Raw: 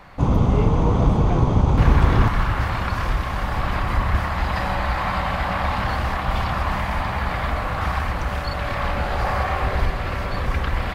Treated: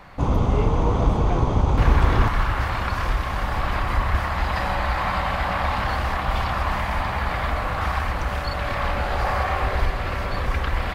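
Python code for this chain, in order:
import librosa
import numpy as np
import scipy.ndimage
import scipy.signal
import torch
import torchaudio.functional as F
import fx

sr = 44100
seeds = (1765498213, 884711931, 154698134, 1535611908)

y = fx.dynamic_eq(x, sr, hz=160.0, q=0.89, threshold_db=-31.0, ratio=4.0, max_db=-6)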